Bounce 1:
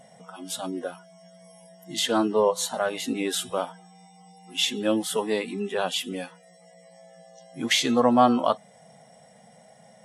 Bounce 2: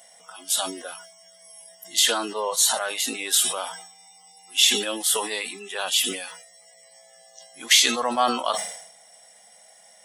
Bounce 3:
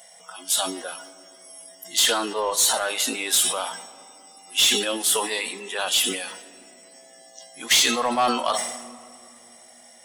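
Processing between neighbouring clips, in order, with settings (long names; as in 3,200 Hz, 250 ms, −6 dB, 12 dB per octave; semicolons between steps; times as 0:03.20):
high-pass filter 670 Hz 6 dB per octave; spectral tilt +3.5 dB per octave; level that may fall only so fast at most 70 dB per second
soft clipping −14.5 dBFS, distortion −13 dB; on a send at −15 dB: convolution reverb RT60 2.9 s, pre-delay 7 ms; on the sum: level +2.5 dB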